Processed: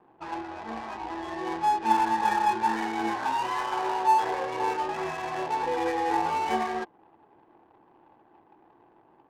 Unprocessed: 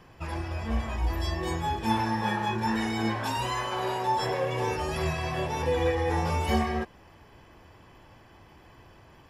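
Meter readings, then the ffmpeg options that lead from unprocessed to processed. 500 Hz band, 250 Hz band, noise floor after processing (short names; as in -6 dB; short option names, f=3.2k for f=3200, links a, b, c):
-2.5 dB, -3.5 dB, -61 dBFS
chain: -af "highpass=320,equalizer=f=330:t=q:w=4:g=5,equalizer=f=560:t=q:w=4:g=-6,equalizer=f=840:t=q:w=4:g=9,equalizer=f=1.5k:t=q:w=4:g=3,lowpass=f=3.3k:w=0.5412,lowpass=f=3.3k:w=1.3066,adynamicsmooth=sensitivity=7.5:basefreq=510,volume=-1dB"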